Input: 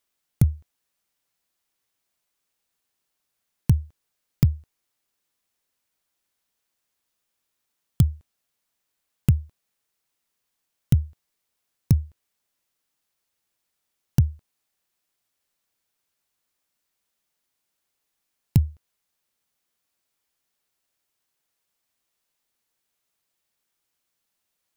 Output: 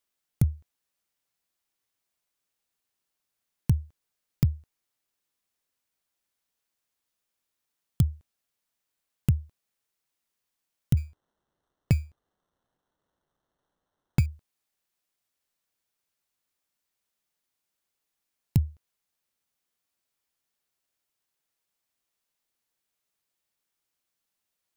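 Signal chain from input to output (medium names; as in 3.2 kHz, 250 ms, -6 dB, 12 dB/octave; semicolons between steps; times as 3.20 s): 10.97–14.26 s: sample-rate reducer 2.4 kHz, jitter 0%; trim -4.5 dB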